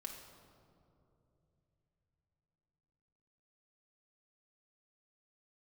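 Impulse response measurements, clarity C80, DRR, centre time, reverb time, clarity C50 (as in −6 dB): 6.5 dB, 1.0 dB, 49 ms, 2.9 s, 4.5 dB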